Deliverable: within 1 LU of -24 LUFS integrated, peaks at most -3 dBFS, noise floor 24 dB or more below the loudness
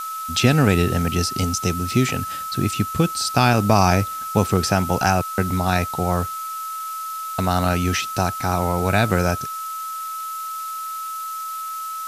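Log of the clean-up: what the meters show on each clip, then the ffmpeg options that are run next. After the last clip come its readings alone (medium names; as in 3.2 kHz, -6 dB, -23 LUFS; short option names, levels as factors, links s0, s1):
steady tone 1.3 kHz; tone level -27 dBFS; noise floor -30 dBFS; noise floor target -46 dBFS; loudness -21.5 LUFS; peak level -2.0 dBFS; loudness target -24.0 LUFS
-> -af "bandreject=f=1300:w=30"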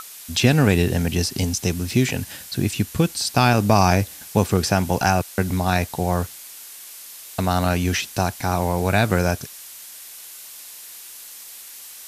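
steady tone not found; noise floor -40 dBFS; noise floor target -45 dBFS
-> -af "afftdn=nr=6:nf=-40"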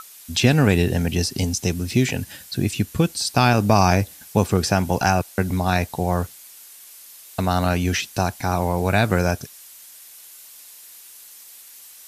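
noise floor -45 dBFS; loudness -21.0 LUFS; peak level -2.5 dBFS; loudness target -24.0 LUFS
-> -af "volume=0.708"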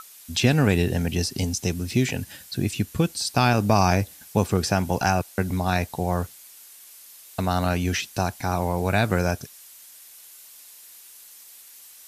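loudness -24.0 LUFS; peak level -5.5 dBFS; noise floor -48 dBFS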